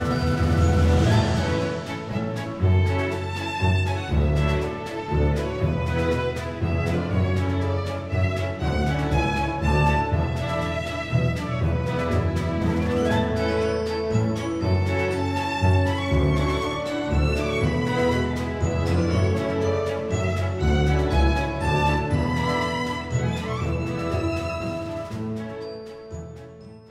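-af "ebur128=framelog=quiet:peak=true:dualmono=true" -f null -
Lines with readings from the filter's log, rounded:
Integrated loudness:
  I:         -20.7 LUFS
  Threshold: -30.9 LUFS
Loudness range:
  LRA:         2.0 LU
  Threshold: -40.9 LUFS
  LRA low:   -21.8 LUFS
  LRA high:  -19.9 LUFS
True peak:
  Peak:       -8.6 dBFS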